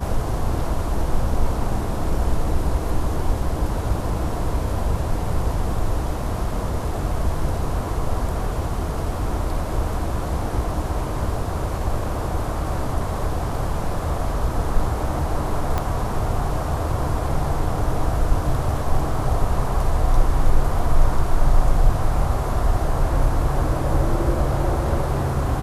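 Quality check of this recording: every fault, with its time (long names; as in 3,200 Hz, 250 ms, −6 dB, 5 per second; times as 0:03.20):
0:15.78: click −10 dBFS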